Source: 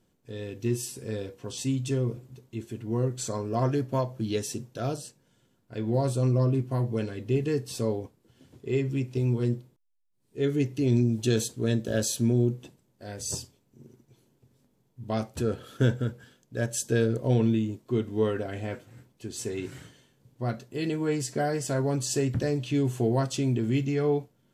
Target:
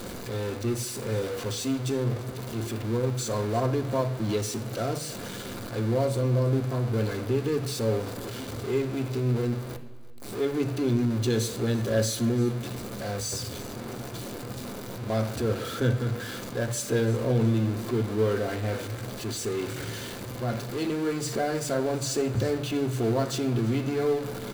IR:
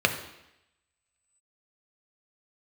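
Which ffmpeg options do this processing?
-filter_complex "[0:a]aeval=exprs='val(0)+0.5*0.0398*sgn(val(0))':channel_layout=same,aecho=1:1:338|676|1014:0.106|0.0339|0.0108,asplit=2[link_01][link_02];[1:a]atrim=start_sample=2205[link_03];[link_02][link_03]afir=irnorm=-1:irlink=0,volume=-13dB[link_04];[link_01][link_04]amix=inputs=2:normalize=0,volume=-6.5dB"

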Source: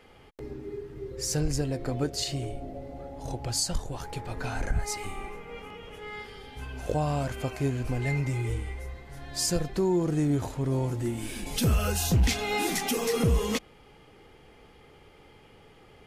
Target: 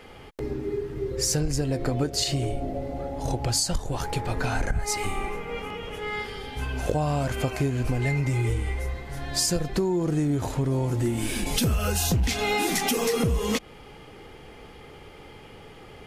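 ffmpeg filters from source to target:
ffmpeg -i in.wav -af "acompressor=threshold=-30dB:ratio=6,volume=8.5dB" out.wav

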